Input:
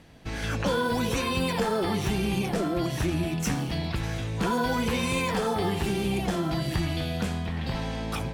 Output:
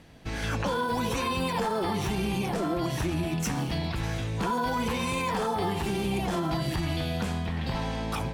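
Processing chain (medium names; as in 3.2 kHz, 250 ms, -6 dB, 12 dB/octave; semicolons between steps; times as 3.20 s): dynamic bell 950 Hz, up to +6 dB, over -43 dBFS, Q 2.3; peak limiter -20 dBFS, peak gain reduction 6.5 dB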